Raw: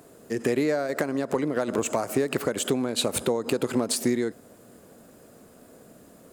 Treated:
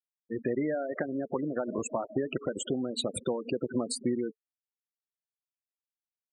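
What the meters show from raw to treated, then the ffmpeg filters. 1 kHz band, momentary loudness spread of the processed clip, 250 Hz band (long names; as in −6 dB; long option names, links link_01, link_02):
−7.0 dB, 3 LU, −5.0 dB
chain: -af "afftfilt=real='re*gte(hypot(re,im),0.0708)':imag='im*gte(hypot(re,im),0.0708)':win_size=1024:overlap=0.75,bandreject=frequency=440:width=12,volume=-5dB"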